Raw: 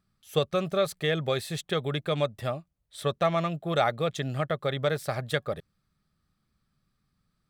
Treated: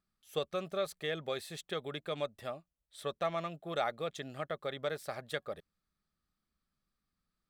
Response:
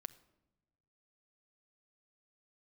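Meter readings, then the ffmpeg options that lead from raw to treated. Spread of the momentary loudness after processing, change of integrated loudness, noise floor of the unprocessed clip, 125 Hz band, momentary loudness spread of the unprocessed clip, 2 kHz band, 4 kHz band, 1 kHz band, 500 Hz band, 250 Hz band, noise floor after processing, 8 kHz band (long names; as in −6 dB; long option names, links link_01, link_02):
8 LU, −9.5 dB, −77 dBFS, −16.0 dB, 7 LU, −8.5 dB, −8.5 dB, −8.5 dB, −9.0 dB, −12.0 dB, below −85 dBFS, −8.5 dB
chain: -af "equalizer=frequency=120:width=1.4:gain=-11,volume=-8.5dB"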